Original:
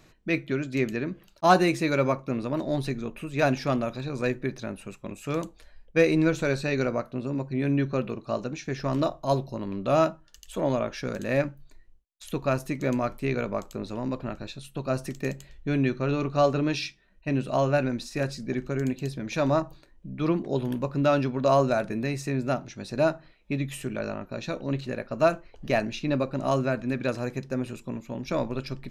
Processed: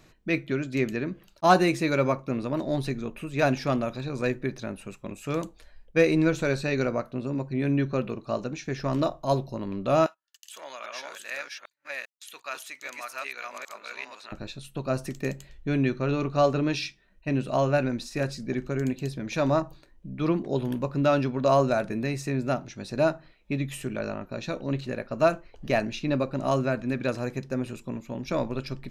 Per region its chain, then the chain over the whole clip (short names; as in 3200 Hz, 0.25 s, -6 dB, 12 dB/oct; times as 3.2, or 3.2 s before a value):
10.06–14.32 reverse delay 0.399 s, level -0.5 dB + HPF 1500 Hz + gate -56 dBFS, range -19 dB
whole clip: dry